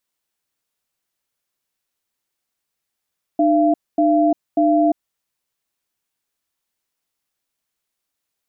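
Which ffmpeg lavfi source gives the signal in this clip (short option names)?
-f lavfi -i "aevalsrc='0.178*(sin(2*PI*303*t)+sin(2*PI*681*t))*clip(min(mod(t,0.59),0.35-mod(t,0.59))/0.005,0,1)':d=1.71:s=44100"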